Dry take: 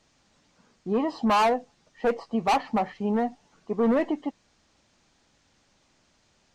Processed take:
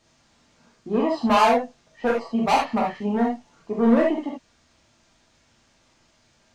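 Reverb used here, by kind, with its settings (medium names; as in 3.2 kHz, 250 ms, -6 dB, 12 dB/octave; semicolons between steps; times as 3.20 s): gated-style reverb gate 100 ms flat, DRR -2.5 dB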